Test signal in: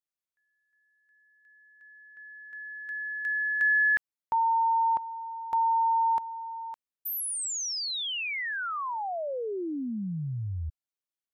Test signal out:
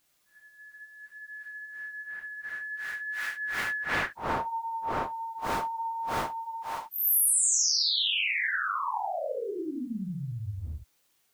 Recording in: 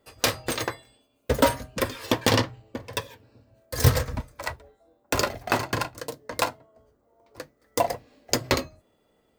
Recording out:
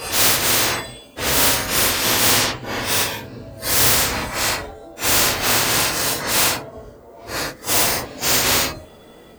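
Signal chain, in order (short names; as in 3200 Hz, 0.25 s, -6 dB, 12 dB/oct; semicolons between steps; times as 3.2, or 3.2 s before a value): phase scrambler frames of 0.2 s; spectral compressor 4:1; gain +4 dB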